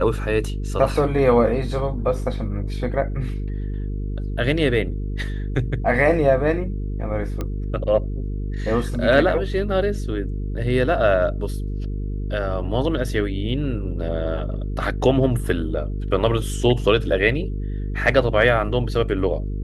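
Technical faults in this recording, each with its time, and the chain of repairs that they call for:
buzz 50 Hz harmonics 9 -26 dBFS
7.41 pop -14 dBFS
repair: de-click; de-hum 50 Hz, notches 9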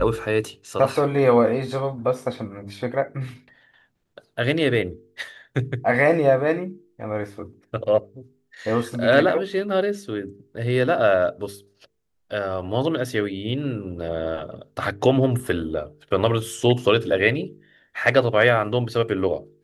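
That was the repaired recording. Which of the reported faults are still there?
none

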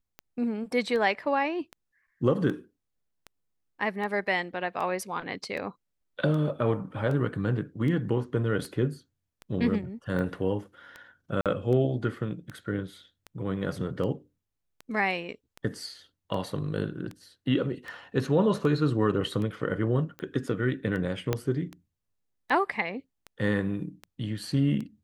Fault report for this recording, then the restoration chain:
tick 78 rpm -25 dBFS
11.41–11.46 gap 47 ms
21.33 pop -12 dBFS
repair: de-click; interpolate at 11.41, 47 ms

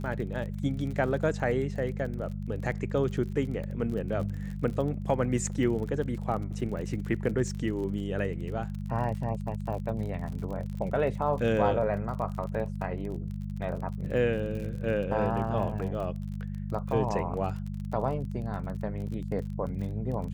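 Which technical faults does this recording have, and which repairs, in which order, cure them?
crackle 38/s -36 dBFS
hum 50 Hz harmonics 4 -35 dBFS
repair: de-click; de-hum 50 Hz, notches 4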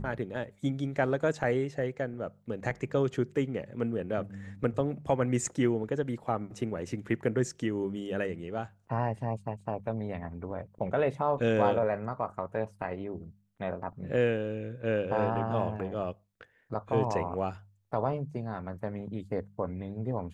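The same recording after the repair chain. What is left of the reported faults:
none

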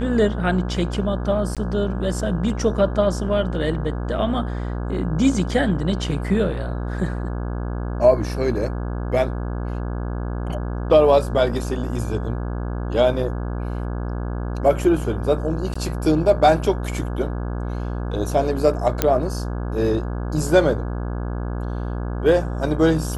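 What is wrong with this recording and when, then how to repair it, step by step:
buzz 60 Hz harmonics 28 -26 dBFS
1.55–1.57 gap 17 ms
15.74–15.76 gap 15 ms
19.02 pop -2 dBFS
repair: de-click; de-hum 60 Hz, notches 28; interpolate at 1.55, 17 ms; interpolate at 15.74, 15 ms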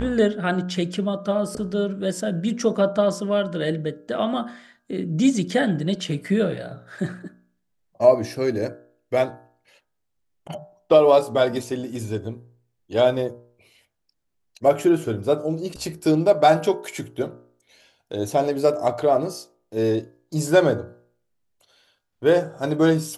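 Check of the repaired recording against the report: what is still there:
none

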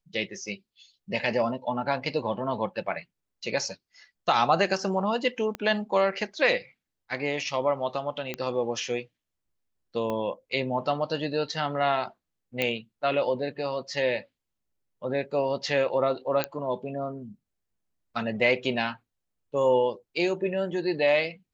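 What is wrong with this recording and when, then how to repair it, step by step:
5.55 pop -19 dBFS
8.34 pop -16 dBFS
10.1 pop -19 dBFS
12.62 pop -12 dBFS
16.44 pop -10 dBFS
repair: de-click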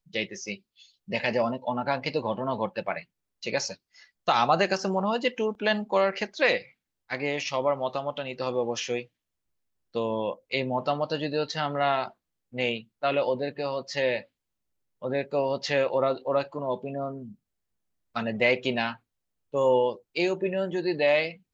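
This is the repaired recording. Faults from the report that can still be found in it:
5.55 pop
10.1 pop
12.62 pop

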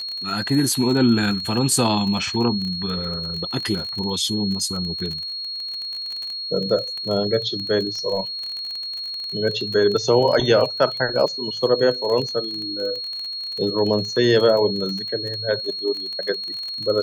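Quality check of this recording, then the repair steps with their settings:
crackle 27/s -26 dBFS
tone 4300 Hz -27 dBFS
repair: de-click; notch 4300 Hz, Q 30

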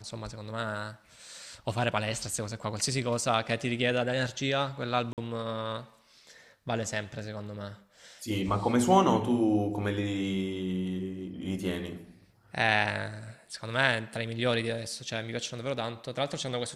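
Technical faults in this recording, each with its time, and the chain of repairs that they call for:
5.13–5.18 gap 48 ms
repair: interpolate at 5.13, 48 ms

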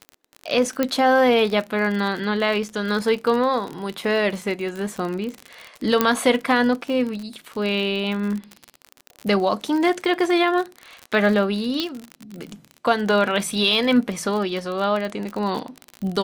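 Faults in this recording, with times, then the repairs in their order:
crackle 46/s -26 dBFS
0.83 pop -7 dBFS
6.01 pop -2 dBFS
11.8 pop -10 dBFS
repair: de-click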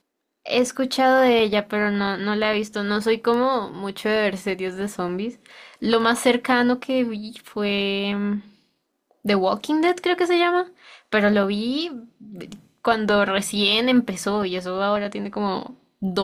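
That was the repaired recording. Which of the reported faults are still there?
6.01 pop

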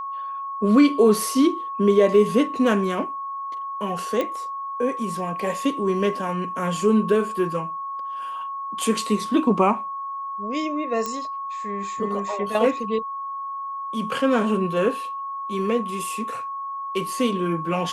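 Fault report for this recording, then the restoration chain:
tone 1100 Hz -28 dBFS
4.21 pop -13 dBFS
11.06 pop -13 dBFS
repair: de-click; notch 1100 Hz, Q 30

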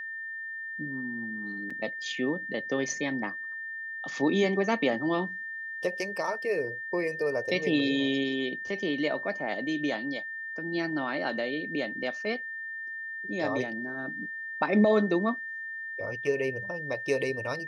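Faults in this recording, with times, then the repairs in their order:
tone 1800 Hz -35 dBFS
1.7–1.71 gap 5.1 ms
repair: notch 1800 Hz, Q 30; interpolate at 1.7, 5.1 ms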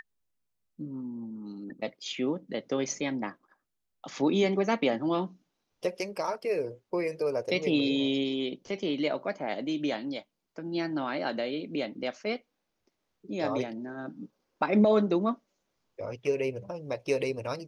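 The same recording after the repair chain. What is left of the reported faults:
none

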